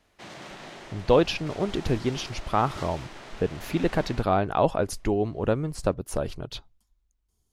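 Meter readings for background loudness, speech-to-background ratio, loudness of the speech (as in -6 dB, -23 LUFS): -42.5 LUFS, 15.5 dB, -27.0 LUFS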